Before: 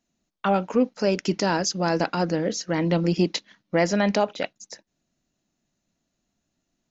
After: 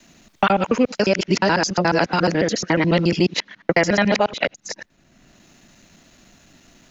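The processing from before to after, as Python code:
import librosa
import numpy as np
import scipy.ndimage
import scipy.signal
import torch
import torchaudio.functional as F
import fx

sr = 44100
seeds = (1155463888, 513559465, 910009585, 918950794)

y = fx.local_reverse(x, sr, ms=71.0)
y = fx.peak_eq(y, sr, hz=2100.0, db=6.0, octaves=1.7)
y = fx.band_squash(y, sr, depth_pct=70)
y = y * librosa.db_to_amplitude(3.5)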